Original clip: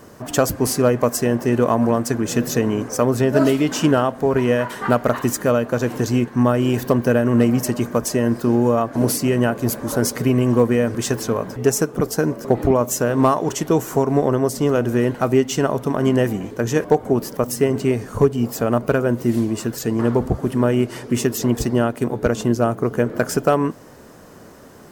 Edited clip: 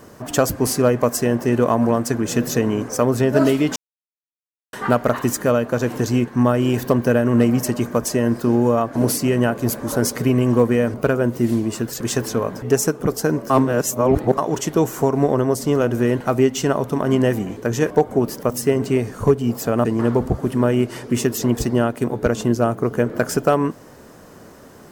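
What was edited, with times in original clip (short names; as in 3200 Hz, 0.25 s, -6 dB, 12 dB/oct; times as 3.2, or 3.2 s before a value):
3.76–4.73 mute
12.44–13.32 reverse
18.79–19.85 move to 10.94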